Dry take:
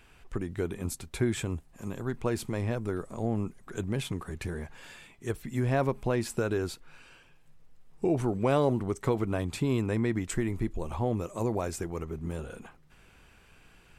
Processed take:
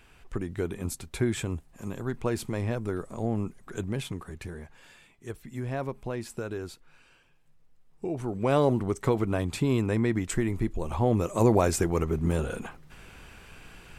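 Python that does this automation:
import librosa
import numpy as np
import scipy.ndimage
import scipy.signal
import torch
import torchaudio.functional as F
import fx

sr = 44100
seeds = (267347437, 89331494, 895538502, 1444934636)

y = fx.gain(x, sr, db=fx.line((3.74, 1.0), (4.73, -5.5), (8.17, -5.5), (8.58, 2.5), (10.81, 2.5), (11.48, 9.0)))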